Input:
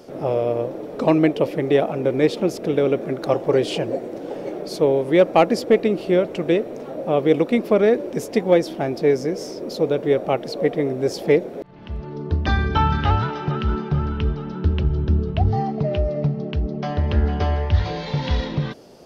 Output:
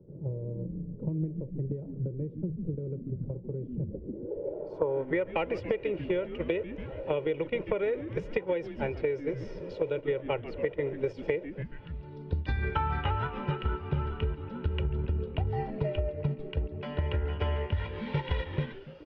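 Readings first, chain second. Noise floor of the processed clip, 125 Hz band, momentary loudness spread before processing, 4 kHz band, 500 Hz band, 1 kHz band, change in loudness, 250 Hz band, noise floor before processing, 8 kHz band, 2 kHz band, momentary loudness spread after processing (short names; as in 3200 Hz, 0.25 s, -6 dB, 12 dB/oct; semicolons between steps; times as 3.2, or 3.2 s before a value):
-46 dBFS, -9.0 dB, 9 LU, -13.0 dB, -12.5 dB, -12.5 dB, -12.0 dB, -14.0 dB, -34 dBFS, under -30 dB, -9.0 dB, 7 LU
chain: spectral gain 11.86–12.63, 320–3400 Hz -8 dB; gate -21 dBFS, range -13 dB; high shelf 6500 Hz -4.5 dB; comb 2.1 ms, depth 75%; dynamic EQ 4300 Hz, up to -6 dB, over -54 dBFS, Q 3.2; on a send: frequency-shifting echo 0.14 s, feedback 50%, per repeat -150 Hz, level -19 dB; on the sum: compressor 12:1, threshold -22 dBFS, peak gain reduction 16.5 dB; low-pass sweep 180 Hz -> 2700 Hz, 3.88–5.33; three-band squash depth 40%; gain -3.5 dB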